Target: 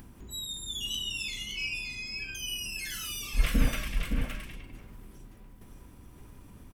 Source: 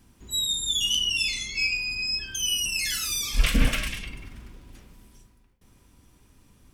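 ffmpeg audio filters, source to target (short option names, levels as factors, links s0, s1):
-af "equalizer=f=5400:t=o:w=2.3:g=-9.5,acompressor=mode=upward:threshold=0.0158:ratio=2.5,aecho=1:1:566:0.531,volume=0.668"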